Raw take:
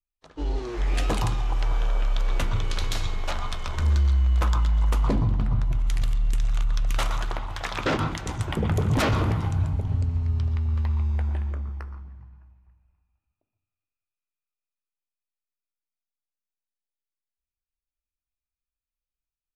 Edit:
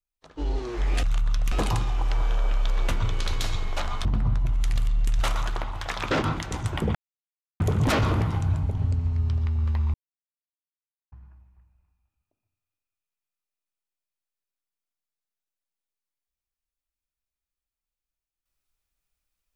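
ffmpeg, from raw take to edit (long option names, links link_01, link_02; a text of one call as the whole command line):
ffmpeg -i in.wav -filter_complex "[0:a]asplit=8[link_01][link_02][link_03][link_04][link_05][link_06][link_07][link_08];[link_01]atrim=end=1.032[link_09];[link_02]atrim=start=6.458:end=6.952[link_10];[link_03]atrim=start=1.028:end=3.562[link_11];[link_04]atrim=start=5.308:end=6.462[link_12];[link_05]atrim=start=6.948:end=8.7,asetpts=PTS-STARTPTS,afade=type=out:start_time=1.748:duration=0.004:curve=hsin,apad=pad_dur=0.65[link_13];[link_06]atrim=start=8.7:end=11.04,asetpts=PTS-STARTPTS,afade=type=in:duration=0.004:curve=hsin,afade=type=out:start_time=2.336:duration=0.004:curve=hsin[link_14];[link_07]atrim=start=11.04:end=12.22,asetpts=PTS-STARTPTS,volume=0[link_15];[link_08]atrim=start=12.22,asetpts=PTS-STARTPTS,afade=type=in:duration=0.004:curve=hsin[link_16];[link_09][link_10]acrossfade=duration=0.004:curve1=hsin:curve2=hsin[link_17];[link_17][link_11]acrossfade=duration=0.004:curve1=hsin:curve2=hsin[link_18];[link_18][link_12]acrossfade=duration=0.004:curve1=hsin:curve2=hsin[link_19];[link_13][link_14][link_15][link_16]concat=n=4:v=0:a=1[link_20];[link_19][link_20]acrossfade=duration=0.004:curve1=hsin:curve2=hsin" out.wav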